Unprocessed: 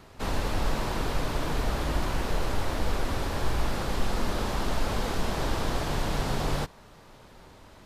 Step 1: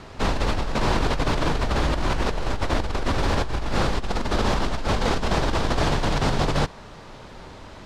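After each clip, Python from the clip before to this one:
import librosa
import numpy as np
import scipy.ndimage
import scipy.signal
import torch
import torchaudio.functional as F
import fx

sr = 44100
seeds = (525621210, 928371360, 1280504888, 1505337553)

y = scipy.signal.sosfilt(scipy.signal.butter(2, 6800.0, 'lowpass', fs=sr, output='sos'), x)
y = fx.over_compress(y, sr, threshold_db=-29.0, ratio=-1.0)
y = F.gain(torch.from_numpy(y), 7.0).numpy()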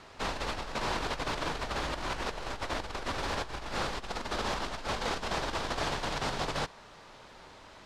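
y = fx.low_shelf(x, sr, hz=390.0, db=-11.0)
y = F.gain(torch.from_numpy(y), -6.0).numpy()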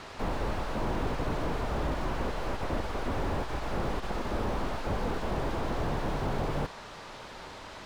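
y = fx.slew_limit(x, sr, full_power_hz=8.4)
y = F.gain(torch.from_numpy(y), 7.5).numpy()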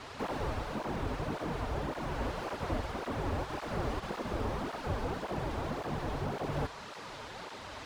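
y = fx.rider(x, sr, range_db=3, speed_s=0.5)
y = fx.flanger_cancel(y, sr, hz=1.8, depth_ms=6.3)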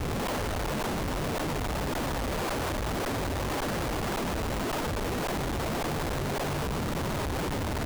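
y = fx.schmitt(x, sr, flips_db=-41.5)
y = F.gain(torch.from_numpy(y), 6.0).numpy()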